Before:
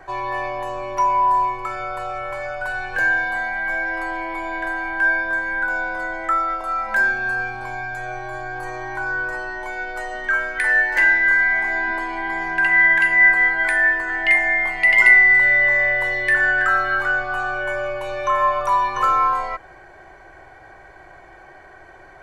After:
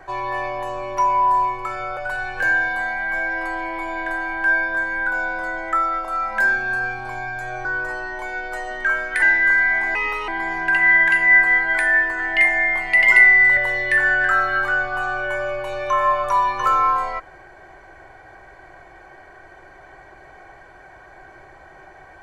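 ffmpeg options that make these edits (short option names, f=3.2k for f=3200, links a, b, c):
-filter_complex "[0:a]asplit=7[a][b][c][d][e][f][g];[a]atrim=end=1.972[h];[b]atrim=start=2.528:end=8.212[i];[c]atrim=start=9.088:end=10.662[j];[d]atrim=start=11.028:end=11.764[k];[e]atrim=start=11.76:end=12.18,asetpts=PTS-STARTPTS,asetrate=56007,aresample=44100,atrim=end_sample=14584,asetpts=PTS-STARTPTS[l];[f]atrim=start=12.176:end=15.472[m];[g]atrim=start=15.938[n];[h][i]acrossfade=d=0.004:c1=hsin:c2=hsin[o];[o][j]acrossfade=d=0.004:c1=hsin:c2=hsin[p];[p][k]acrossfade=d=0.004:c1=hsin:c2=hsin[q];[q][l]acrossfade=d=0.004:c1=hsin:c2=hsin[r];[r][m]acrossfade=d=0.004:c1=hsin:c2=hsin[s];[s][n]acrossfade=d=0.004:c1=hsin:c2=hsin"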